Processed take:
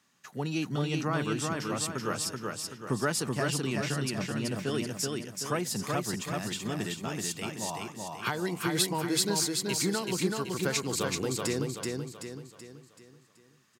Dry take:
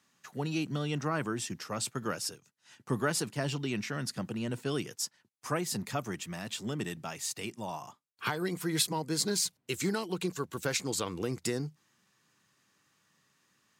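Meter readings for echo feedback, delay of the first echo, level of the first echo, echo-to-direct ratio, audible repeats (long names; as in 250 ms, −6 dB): 45%, 380 ms, −3.0 dB, −2.0 dB, 5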